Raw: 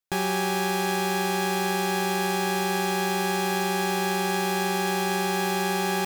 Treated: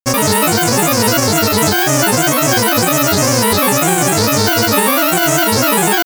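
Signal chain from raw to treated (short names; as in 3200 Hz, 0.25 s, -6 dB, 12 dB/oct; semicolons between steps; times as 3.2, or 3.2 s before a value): resonant high shelf 6800 Hz +8 dB, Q 3; grains, pitch spread up and down by 12 st; maximiser +20.5 dB; gain -1 dB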